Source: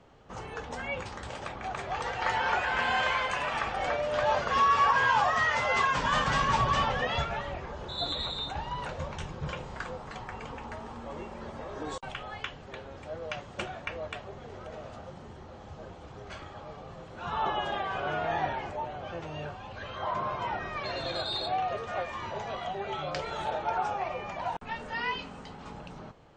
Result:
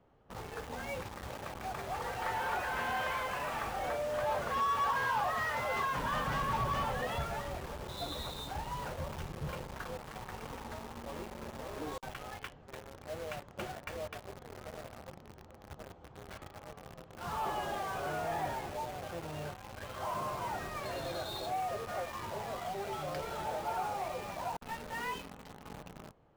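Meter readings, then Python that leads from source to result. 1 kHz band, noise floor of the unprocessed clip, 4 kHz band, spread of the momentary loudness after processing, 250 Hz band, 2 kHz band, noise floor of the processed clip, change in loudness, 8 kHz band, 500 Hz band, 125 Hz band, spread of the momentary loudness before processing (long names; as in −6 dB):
−6.0 dB, −47 dBFS, −9.0 dB, 16 LU, −4.0 dB, −8.0 dB, −55 dBFS, −6.5 dB, −1.5 dB, −4.5 dB, −4.0 dB, 19 LU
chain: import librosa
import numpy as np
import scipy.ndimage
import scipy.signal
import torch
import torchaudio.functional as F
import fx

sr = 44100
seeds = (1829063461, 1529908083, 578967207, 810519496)

p1 = fx.high_shelf(x, sr, hz=2500.0, db=-11.5)
p2 = fx.quant_companded(p1, sr, bits=2)
p3 = p1 + F.gain(torch.from_numpy(p2), -8.0).numpy()
y = F.gain(torch.from_numpy(p3), -8.5).numpy()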